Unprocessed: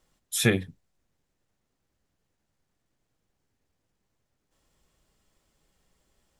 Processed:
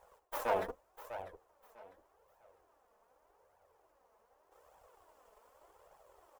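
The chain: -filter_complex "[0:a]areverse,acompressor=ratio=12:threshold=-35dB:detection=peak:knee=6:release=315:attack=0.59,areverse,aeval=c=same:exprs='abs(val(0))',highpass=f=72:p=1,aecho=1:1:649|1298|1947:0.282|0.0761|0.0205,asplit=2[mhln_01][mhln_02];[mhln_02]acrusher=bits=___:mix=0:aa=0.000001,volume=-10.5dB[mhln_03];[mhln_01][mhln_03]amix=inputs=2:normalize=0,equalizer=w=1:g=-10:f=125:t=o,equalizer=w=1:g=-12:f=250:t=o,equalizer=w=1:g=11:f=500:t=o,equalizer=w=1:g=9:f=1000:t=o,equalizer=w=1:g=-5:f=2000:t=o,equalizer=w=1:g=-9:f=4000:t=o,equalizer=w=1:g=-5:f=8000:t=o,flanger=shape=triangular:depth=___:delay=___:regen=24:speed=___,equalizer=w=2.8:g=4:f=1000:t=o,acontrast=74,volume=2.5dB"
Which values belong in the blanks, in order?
7, 3.7, 1.1, 0.84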